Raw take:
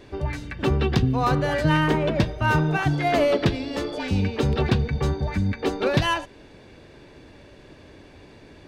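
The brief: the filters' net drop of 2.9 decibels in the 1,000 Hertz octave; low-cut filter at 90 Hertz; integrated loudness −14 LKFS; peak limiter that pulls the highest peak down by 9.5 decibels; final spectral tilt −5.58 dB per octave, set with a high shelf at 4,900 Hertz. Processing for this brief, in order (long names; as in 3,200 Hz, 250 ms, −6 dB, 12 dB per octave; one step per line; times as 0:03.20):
high-pass filter 90 Hz
parametric band 1,000 Hz −3.5 dB
high-shelf EQ 4,900 Hz −6 dB
level +13 dB
brickwall limiter −4.5 dBFS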